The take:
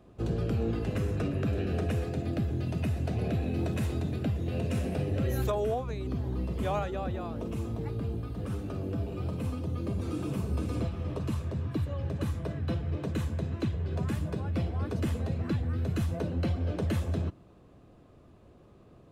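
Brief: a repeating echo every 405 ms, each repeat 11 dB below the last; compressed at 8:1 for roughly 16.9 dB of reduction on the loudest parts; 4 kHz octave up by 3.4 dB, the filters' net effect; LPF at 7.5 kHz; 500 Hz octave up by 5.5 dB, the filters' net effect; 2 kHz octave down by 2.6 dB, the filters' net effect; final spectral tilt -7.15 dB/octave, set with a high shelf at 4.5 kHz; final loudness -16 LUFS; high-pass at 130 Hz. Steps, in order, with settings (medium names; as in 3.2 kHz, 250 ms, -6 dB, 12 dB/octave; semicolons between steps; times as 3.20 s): high-pass 130 Hz; low-pass 7.5 kHz; peaking EQ 500 Hz +7 dB; peaking EQ 2 kHz -6.5 dB; peaking EQ 4 kHz +3.5 dB; treble shelf 4.5 kHz +6.5 dB; compression 8:1, threshold -41 dBFS; feedback delay 405 ms, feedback 28%, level -11 dB; trim +28.5 dB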